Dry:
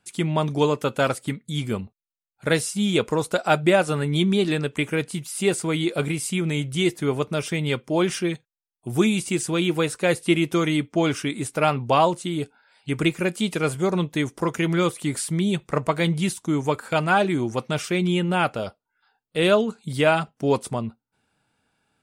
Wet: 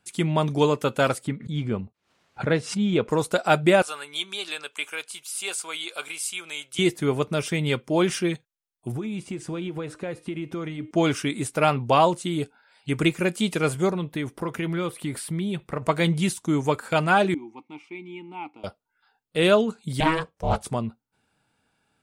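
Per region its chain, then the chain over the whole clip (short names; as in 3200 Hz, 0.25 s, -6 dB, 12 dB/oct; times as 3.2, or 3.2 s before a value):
1.27–3.09 HPF 59 Hz + tape spacing loss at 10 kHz 24 dB + backwards sustainer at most 120 dB/s
3.82–6.79 HPF 1100 Hz + bell 1900 Hz -11 dB 0.22 oct
8.92–10.91 LPF 1500 Hz 6 dB/oct + compressor 10:1, threshold -27 dBFS + de-hum 308.9 Hz, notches 39
13.91–15.82 compressor 2.5:1, threshold -26 dBFS + bell 6700 Hz -10.5 dB 0.78 oct
17.34–18.64 vowel filter u + low shelf 300 Hz -8.5 dB
20–20.66 ring modulator 320 Hz + Doppler distortion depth 0.32 ms
whole clip: dry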